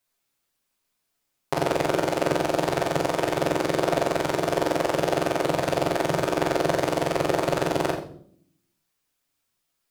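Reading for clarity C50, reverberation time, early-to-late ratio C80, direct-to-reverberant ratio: 7.0 dB, 0.55 s, 10.5 dB, -4.0 dB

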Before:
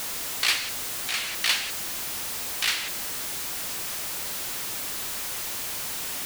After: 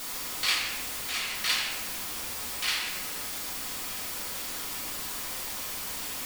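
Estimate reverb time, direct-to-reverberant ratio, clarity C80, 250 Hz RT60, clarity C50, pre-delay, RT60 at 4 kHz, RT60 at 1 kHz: 1.2 s, -4.5 dB, 5.0 dB, 1.4 s, 2.5 dB, 4 ms, 0.75 s, 1.1 s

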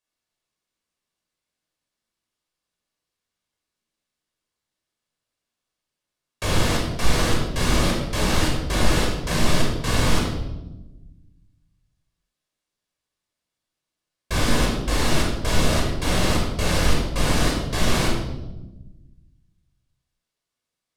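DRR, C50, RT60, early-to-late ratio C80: -2.0 dB, 2.5 dB, 1.0 s, 5.0 dB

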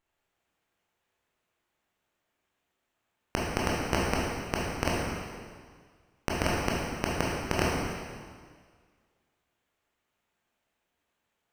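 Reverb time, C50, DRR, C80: 1.8 s, -1.5 dB, -5.5 dB, 0.5 dB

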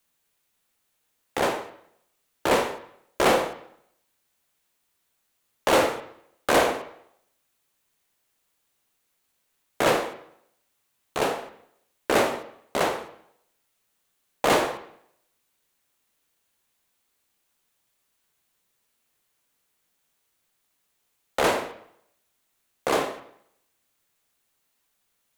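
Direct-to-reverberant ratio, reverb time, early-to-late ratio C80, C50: 8.0 dB, 0.70 s, 14.0 dB, 11.5 dB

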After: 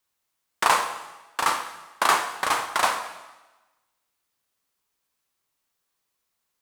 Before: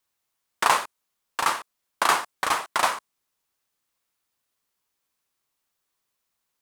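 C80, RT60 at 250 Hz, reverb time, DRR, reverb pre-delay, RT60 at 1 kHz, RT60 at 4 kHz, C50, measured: 11.0 dB, 1.1 s, 1.1 s, 7.0 dB, 6 ms, 1.1 s, 1.1 s, 9.5 dB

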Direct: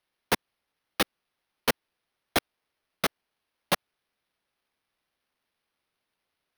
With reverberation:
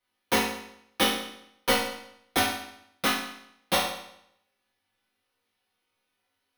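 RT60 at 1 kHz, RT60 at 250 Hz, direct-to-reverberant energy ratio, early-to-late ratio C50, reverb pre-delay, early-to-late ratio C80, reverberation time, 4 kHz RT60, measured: 0.75 s, 0.75 s, -9.0 dB, 2.0 dB, 4 ms, 6.0 dB, 0.75 s, 0.70 s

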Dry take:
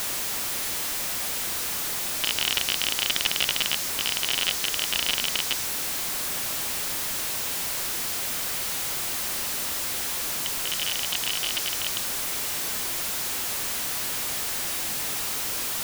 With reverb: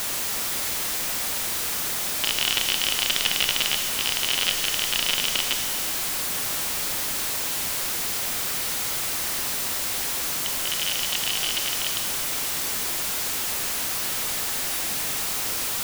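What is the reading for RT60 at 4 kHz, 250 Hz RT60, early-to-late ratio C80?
2.1 s, 2.2 s, 7.0 dB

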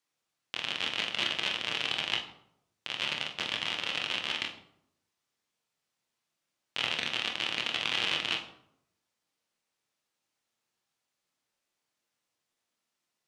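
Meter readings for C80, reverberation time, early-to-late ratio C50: 12.0 dB, 0.75 s, 9.0 dB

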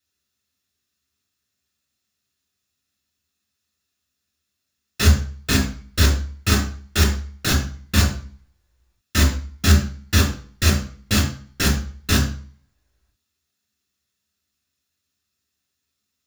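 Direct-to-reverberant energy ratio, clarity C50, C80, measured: 0.5 dB, 7.5 dB, 12.0 dB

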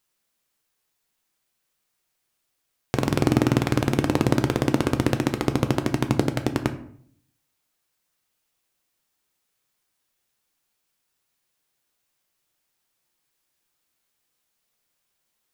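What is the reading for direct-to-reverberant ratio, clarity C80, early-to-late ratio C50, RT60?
7.0 dB, 15.5 dB, 12.5 dB, 0.60 s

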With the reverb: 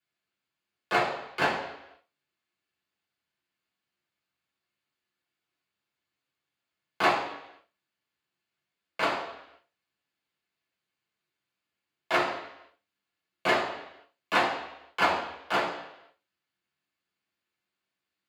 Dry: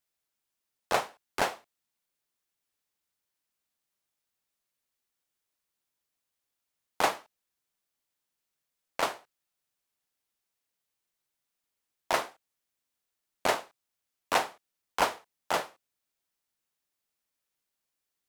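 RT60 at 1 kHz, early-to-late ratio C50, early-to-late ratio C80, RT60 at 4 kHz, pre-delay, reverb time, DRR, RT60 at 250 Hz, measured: 0.85 s, 5.5 dB, 8.5 dB, 0.90 s, 3 ms, 0.85 s, -6.5 dB, 0.80 s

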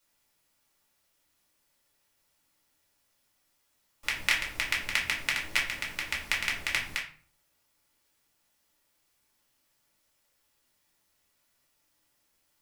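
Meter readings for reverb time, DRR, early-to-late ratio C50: 0.45 s, -3.5 dB, 8.0 dB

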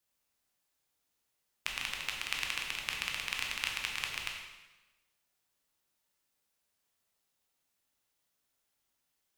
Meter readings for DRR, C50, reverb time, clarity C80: 0.0 dB, 3.5 dB, 1.1 s, 5.0 dB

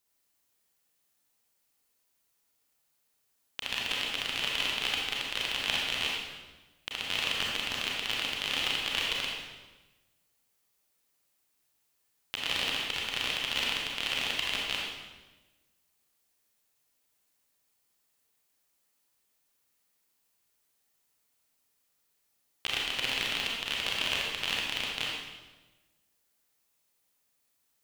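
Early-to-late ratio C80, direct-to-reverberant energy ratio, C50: 1.5 dB, -3.5 dB, -1.0 dB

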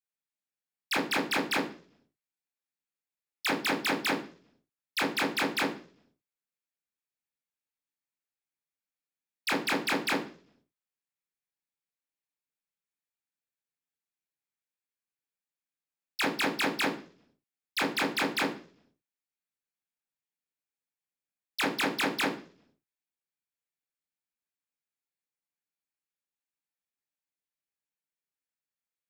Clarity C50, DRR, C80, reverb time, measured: 9.5 dB, -2.5 dB, 14.0 dB, 0.45 s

